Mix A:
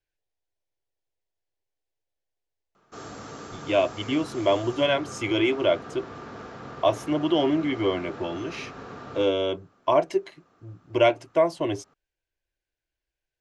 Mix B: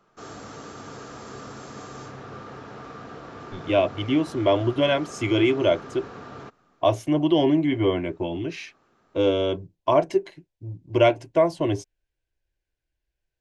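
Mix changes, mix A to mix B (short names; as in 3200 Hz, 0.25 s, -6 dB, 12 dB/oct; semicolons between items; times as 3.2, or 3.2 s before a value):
speech: add low shelf 250 Hz +9 dB; background: entry -2.75 s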